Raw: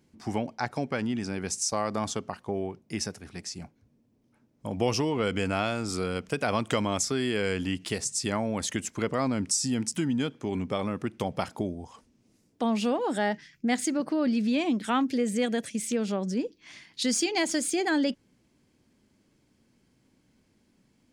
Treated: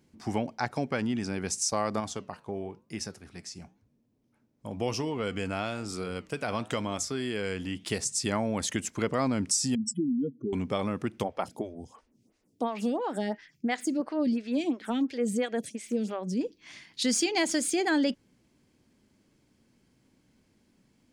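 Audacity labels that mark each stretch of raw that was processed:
2.000000	7.870000	flange 1 Hz, delay 4.9 ms, depth 5.8 ms, regen -87%
9.750000	10.530000	spectral contrast raised exponent 3.6
11.230000	16.410000	photocell phaser 2.9 Hz

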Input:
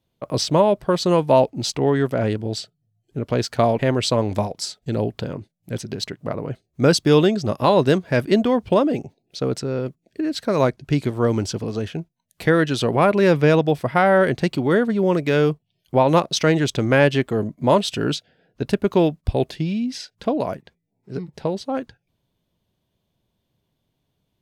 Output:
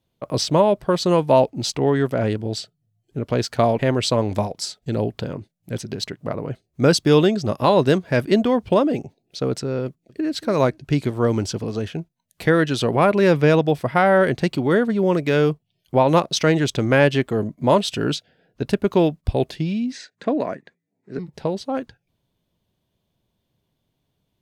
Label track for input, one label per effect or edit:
9.860000	10.320000	echo throw 0.23 s, feedback 20%, level -17.5 dB
19.920000	21.190000	speaker cabinet 180–7900 Hz, peaks and dips at 280 Hz +3 dB, 850 Hz -4 dB, 1800 Hz +8 dB, 3100 Hz -7 dB, 5200 Hz -9 dB

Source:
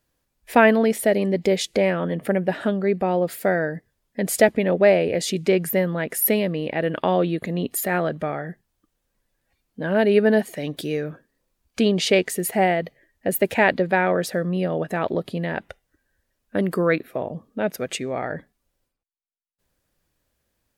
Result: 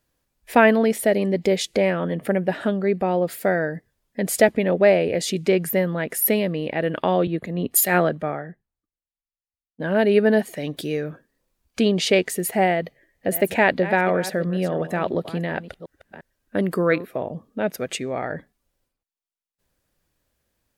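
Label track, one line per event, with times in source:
7.270000	9.800000	three-band expander depth 100%
12.710000	17.060000	reverse delay 0.35 s, level -13.5 dB

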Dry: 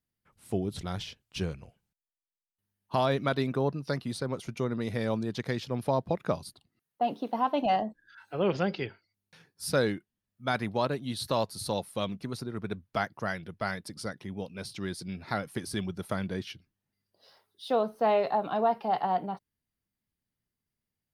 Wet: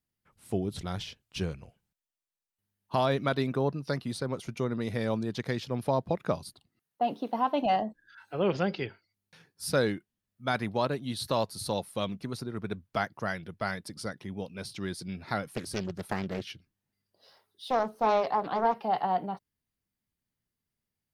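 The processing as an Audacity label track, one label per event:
15.560000	18.750000	Doppler distortion depth 0.77 ms

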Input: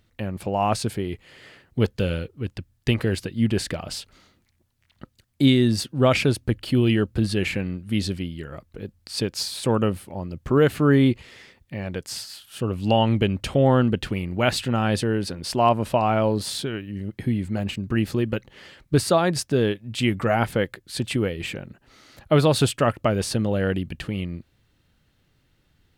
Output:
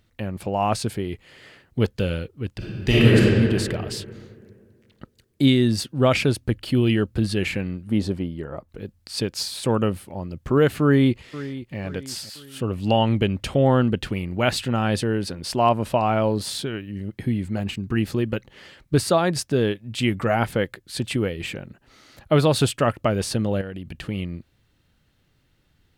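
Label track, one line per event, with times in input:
2.570000	3.170000	reverb throw, RT60 2.2 s, DRR -9 dB
7.870000	8.690000	EQ curve 110 Hz 0 dB, 920 Hz +8 dB, 1500 Hz -1 dB, 2600 Hz -7 dB
10.820000	11.780000	echo throw 0.51 s, feedback 45%, level -15 dB
17.600000	18.010000	notch 570 Hz, Q 5.3
23.610000	24.060000	compressor 12:1, threshold -29 dBFS

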